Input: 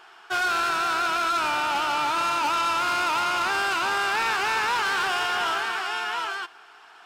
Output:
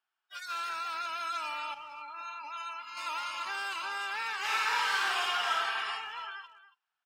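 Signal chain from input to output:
high-pass filter 1,300 Hz 6 dB per octave
0:01.74–0:02.97: downward expander −21 dBFS
0:04.38–0:05.89: thrown reverb, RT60 0.92 s, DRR −4.5 dB
noise reduction from a noise print of the clip's start 28 dB
far-end echo of a speakerphone 280 ms, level −15 dB
level −7.5 dB

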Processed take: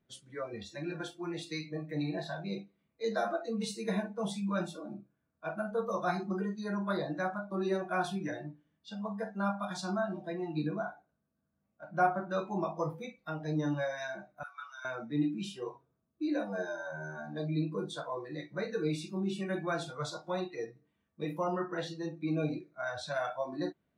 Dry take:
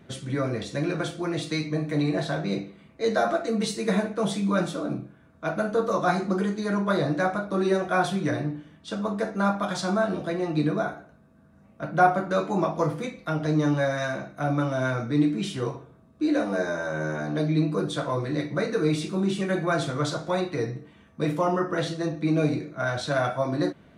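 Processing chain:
noise reduction from a noise print of the clip's start 17 dB
0:14.43–0:14.85: Chebyshev high-pass filter 1,200 Hz, order 4
level −8.5 dB

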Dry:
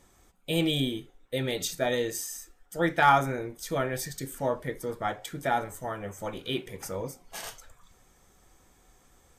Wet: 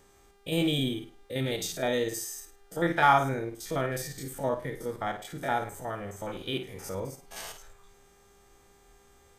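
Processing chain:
spectrum averaged block by block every 50 ms
flutter between parallel walls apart 9 metres, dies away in 0.31 s
hum with harmonics 400 Hz, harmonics 38, −64 dBFS −6 dB per octave

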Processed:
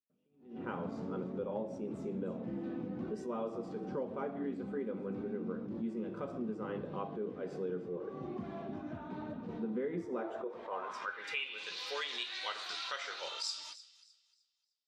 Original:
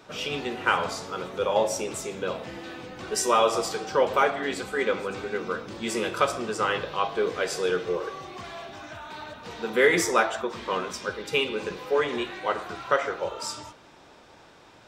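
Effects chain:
noise gate −44 dBFS, range −59 dB
band-pass filter sweep 220 Hz → 4,300 Hz, 0:10.04–0:11.77
downward compressor 6 to 1, threshold −47 dBFS, peak gain reduction 20.5 dB
delay with a high-pass on its return 305 ms, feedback 30%, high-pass 2,400 Hz, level −16 dB
level that may rise only so fast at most 130 dB per second
level +11.5 dB

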